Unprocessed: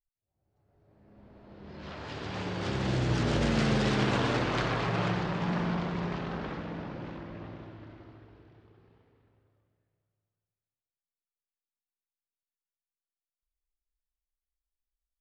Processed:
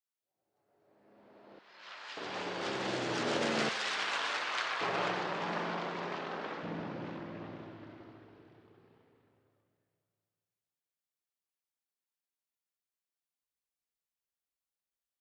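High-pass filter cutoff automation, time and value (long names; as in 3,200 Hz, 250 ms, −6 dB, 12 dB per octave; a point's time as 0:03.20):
350 Hz
from 0:01.59 1,200 Hz
from 0:02.17 360 Hz
from 0:03.69 1,100 Hz
from 0:04.81 390 Hz
from 0:06.63 160 Hz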